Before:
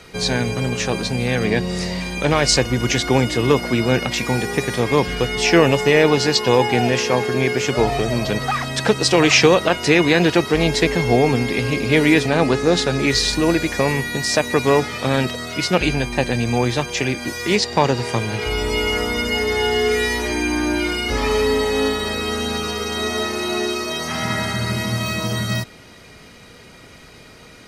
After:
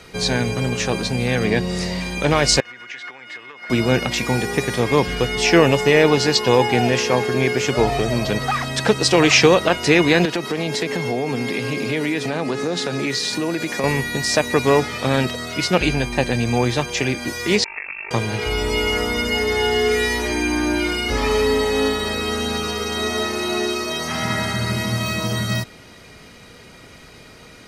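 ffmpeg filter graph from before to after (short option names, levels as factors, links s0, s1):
-filter_complex "[0:a]asettb=1/sr,asplit=3[s0][s1][s2];[s0]atrim=end=2.604[s3];[s1]atrim=start=2.6:end=3.7,asetpts=PTS-STARTPTS,afade=t=in:d=0.004:c=qsin,afade=t=out:st=1.096:d=0.004:c=qsin,acompressor=threshold=0.0891:ratio=10:attack=3.2:release=140:knee=1:detection=peak,bandpass=f=1800:t=q:w=2.1[s4];[s2]atrim=start=3.696[s5];[s3][s4]acrossfade=d=0.004:c1=hsin:c2=qsin[s6];[s6][s5]acrossfade=d=0.004:c1=qsin:c2=hsin,asettb=1/sr,asplit=3[s7][s8][s9];[s7]atrim=end=10.254[s10];[s8]atrim=start=10.25:end=13.84,asetpts=PTS-STARTPTS,afade=t=in:d=0.004:c=qsin,afade=t=out:st=3.586:d=0.004:c=qsin,highpass=f=130:w=0.5412,highpass=f=130:w=1.3066,acompressor=threshold=0.112:ratio=4:attack=3.2:release=140:knee=1:detection=peak[s11];[s9]atrim=start=13.836[s12];[s10][s11]acrossfade=d=0.004:c1=hsin:c2=qsin[s13];[s13][s12]acrossfade=d=0.004:c1=qsin:c2=hsin,asettb=1/sr,asplit=3[s14][s15][s16];[s14]atrim=end=17.644[s17];[s15]atrim=start=17.64:end=18.11,asetpts=PTS-STARTPTS,afade=t=in:d=0.004:c=qsin,afade=t=out:st=0.466:d=0.004:c=qsin,tremolo=f=49:d=0.889,acompressor=threshold=0.0501:ratio=5:attack=3.2:release=140:knee=1:detection=peak,lowpass=f=2400:t=q:w=0.5098,lowpass=f=2400:t=q:w=0.6013,lowpass=f=2400:t=q:w=0.9,lowpass=f=2400:t=q:w=2.563,afreqshift=-2800[s18];[s16]atrim=start=18.106[s19];[s17][s18]acrossfade=d=0.004:c1=hsin:c2=qsin[s20];[s20][s19]acrossfade=d=0.004:c1=qsin:c2=hsin"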